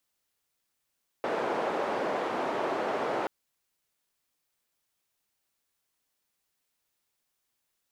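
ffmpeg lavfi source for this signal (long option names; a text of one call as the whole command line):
ffmpeg -f lavfi -i "anoisesrc=color=white:duration=2.03:sample_rate=44100:seed=1,highpass=frequency=410,lowpass=frequency=670,volume=-7.5dB" out.wav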